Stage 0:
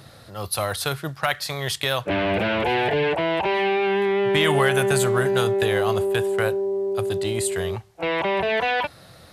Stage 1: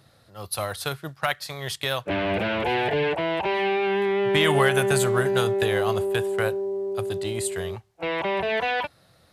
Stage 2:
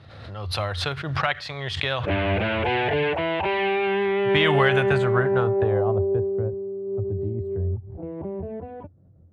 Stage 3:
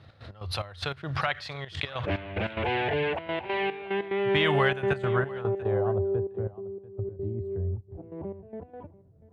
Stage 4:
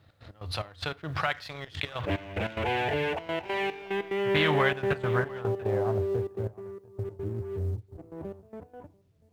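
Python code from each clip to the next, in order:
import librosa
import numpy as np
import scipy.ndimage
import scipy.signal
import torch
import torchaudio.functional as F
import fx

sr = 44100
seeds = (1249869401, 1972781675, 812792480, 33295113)

y1 = fx.upward_expand(x, sr, threshold_db=-39.0, expansion=1.5)
y2 = fx.peak_eq(y1, sr, hz=88.0, db=13.0, octaves=0.48)
y2 = fx.filter_sweep_lowpass(y2, sr, from_hz=3000.0, to_hz=290.0, start_s=4.74, end_s=6.52, q=1.1)
y2 = fx.pre_swell(y2, sr, db_per_s=43.0)
y3 = fx.step_gate(y2, sr, bpm=146, pattern='x.x.xx..x.xxxxx', floor_db=-12.0, edge_ms=4.5)
y3 = y3 + 10.0 ** (-20.5 / 20.0) * np.pad(y3, (int(690 * sr / 1000.0), 0))[:len(y3)]
y3 = F.gain(torch.from_numpy(y3), -4.5).numpy()
y4 = fx.law_mismatch(y3, sr, coded='A')
y4 = fx.rev_fdn(y4, sr, rt60_s=0.32, lf_ratio=1.0, hf_ratio=0.75, size_ms=20.0, drr_db=15.0)
y4 = fx.doppler_dist(y4, sr, depth_ms=0.18)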